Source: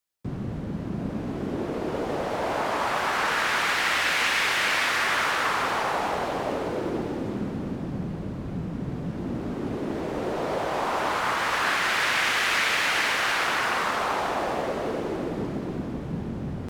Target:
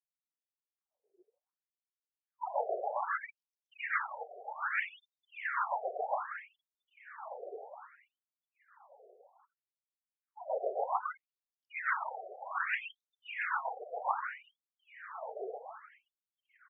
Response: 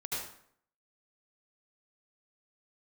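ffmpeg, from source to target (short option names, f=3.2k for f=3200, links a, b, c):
-filter_complex "[0:a]afftfilt=real='re*gte(hypot(re,im),0.126)':imag='im*gte(hypot(re,im),0.126)':win_size=1024:overlap=0.75,acrossover=split=270|2100[a][b][c];[c]acompressor=threshold=-44dB:ratio=4[d];[a][b][d]amix=inputs=3:normalize=0,tremolo=f=7.3:d=0.8,highpass=f=180:p=1,highshelf=f=7.3k:g=3.5,asplit=2[e][f];[f]aecho=0:1:592|1184|1776|2368|2960|3552:0.447|0.232|0.121|0.0628|0.0327|0.017[g];[e][g]amix=inputs=2:normalize=0,afftfilt=real='re*between(b*sr/1024,530*pow(5200/530,0.5+0.5*sin(2*PI*0.63*pts/sr))/1.41,530*pow(5200/530,0.5+0.5*sin(2*PI*0.63*pts/sr))*1.41)':imag='im*between(b*sr/1024,530*pow(5200/530,0.5+0.5*sin(2*PI*0.63*pts/sr))/1.41,530*pow(5200/530,0.5+0.5*sin(2*PI*0.63*pts/sr))*1.41)':win_size=1024:overlap=0.75"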